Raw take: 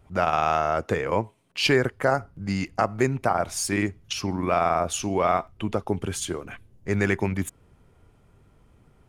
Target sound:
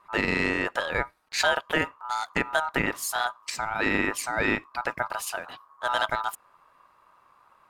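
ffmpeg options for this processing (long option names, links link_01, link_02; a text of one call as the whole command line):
ffmpeg -i in.wav -af "asetrate=52038,aresample=44100,aeval=exprs='val(0)*sin(2*PI*1100*n/s)':channel_layout=same" out.wav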